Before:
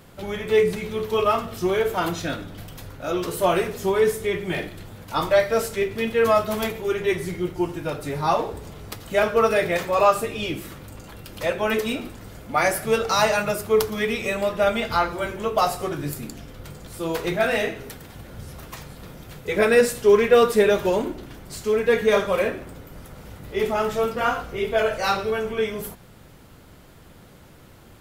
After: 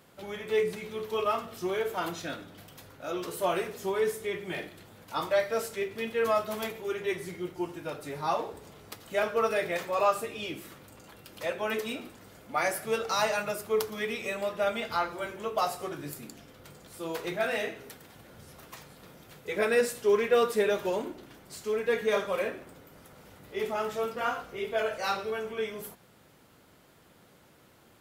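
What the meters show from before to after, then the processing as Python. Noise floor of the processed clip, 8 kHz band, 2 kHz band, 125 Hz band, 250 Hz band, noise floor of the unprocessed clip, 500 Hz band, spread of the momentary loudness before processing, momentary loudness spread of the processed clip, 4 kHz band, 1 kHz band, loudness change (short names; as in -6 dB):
-59 dBFS, -7.5 dB, -7.5 dB, -13.5 dB, -10.5 dB, -48 dBFS, -8.5 dB, 20 LU, 19 LU, -7.5 dB, -8.0 dB, -8.5 dB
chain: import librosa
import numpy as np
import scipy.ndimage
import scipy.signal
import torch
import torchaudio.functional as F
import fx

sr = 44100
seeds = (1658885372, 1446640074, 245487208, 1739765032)

y = fx.highpass(x, sr, hz=240.0, slope=6)
y = y * 10.0 ** (-7.5 / 20.0)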